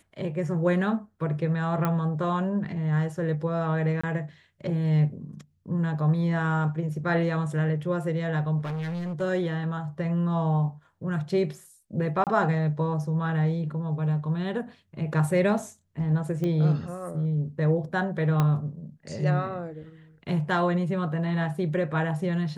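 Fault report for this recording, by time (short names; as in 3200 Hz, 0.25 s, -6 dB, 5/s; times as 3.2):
1.85 pop -14 dBFS
4.01–4.04 gap 25 ms
8.59–9.22 clipped -29 dBFS
12.24–12.27 gap 28 ms
16.44 pop -19 dBFS
18.4 pop -12 dBFS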